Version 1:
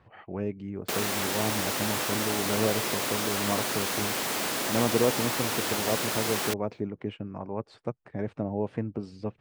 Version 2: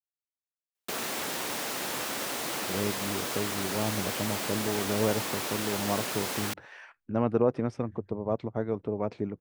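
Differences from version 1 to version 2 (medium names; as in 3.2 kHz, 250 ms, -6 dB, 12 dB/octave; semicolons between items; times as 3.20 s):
speech: entry +2.40 s; background -3.5 dB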